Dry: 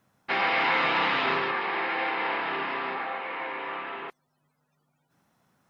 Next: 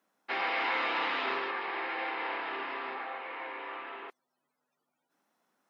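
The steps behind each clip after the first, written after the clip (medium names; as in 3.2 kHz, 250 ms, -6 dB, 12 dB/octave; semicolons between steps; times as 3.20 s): high-pass 250 Hz 24 dB/octave; trim -6.5 dB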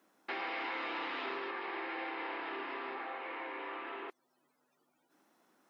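peaking EQ 330 Hz +7.5 dB 0.56 oct; compression 2.5:1, threshold -48 dBFS, peak gain reduction 13.5 dB; trim +5 dB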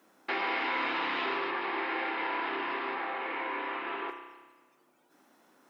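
spring tank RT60 1.3 s, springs 31 ms, chirp 25 ms, DRR 5 dB; trim +6.5 dB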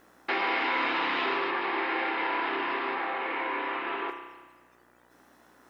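mains buzz 60 Hz, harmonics 33, -68 dBFS 0 dB/octave; trim +3.5 dB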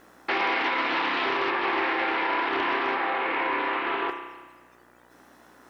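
peak limiter -21.5 dBFS, peak gain reduction 5.5 dB; loudspeaker Doppler distortion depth 0.18 ms; trim +5 dB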